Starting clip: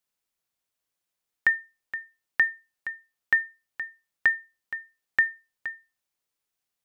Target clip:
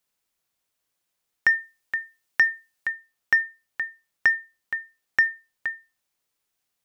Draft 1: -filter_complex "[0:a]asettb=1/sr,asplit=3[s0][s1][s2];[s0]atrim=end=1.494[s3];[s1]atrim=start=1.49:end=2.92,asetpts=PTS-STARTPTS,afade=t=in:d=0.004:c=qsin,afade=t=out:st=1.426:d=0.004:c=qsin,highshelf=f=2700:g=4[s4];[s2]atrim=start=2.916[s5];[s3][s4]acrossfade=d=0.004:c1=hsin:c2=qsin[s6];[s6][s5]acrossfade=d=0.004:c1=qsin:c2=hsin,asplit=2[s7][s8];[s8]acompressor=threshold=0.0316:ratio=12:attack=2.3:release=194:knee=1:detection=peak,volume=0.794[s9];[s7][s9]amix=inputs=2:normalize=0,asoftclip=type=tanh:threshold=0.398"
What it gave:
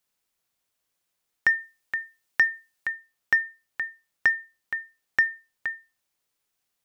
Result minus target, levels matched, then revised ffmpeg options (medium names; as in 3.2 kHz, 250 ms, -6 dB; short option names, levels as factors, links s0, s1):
compression: peak gain reduction +9.5 dB
-filter_complex "[0:a]asettb=1/sr,asplit=3[s0][s1][s2];[s0]atrim=end=1.494[s3];[s1]atrim=start=1.49:end=2.92,asetpts=PTS-STARTPTS,afade=t=in:d=0.004:c=qsin,afade=t=out:st=1.426:d=0.004:c=qsin,highshelf=f=2700:g=4[s4];[s2]atrim=start=2.916[s5];[s3][s4]acrossfade=d=0.004:c1=hsin:c2=qsin[s6];[s6][s5]acrossfade=d=0.004:c1=qsin:c2=hsin,asplit=2[s7][s8];[s8]acompressor=threshold=0.106:ratio=12:attack=2.3:release=194:knee=1:detection=peak,volume=0.794[s9];[s7][s9]amix=inputs=2:normalize=0,asoftclip=type=tanh:threshold=0.398"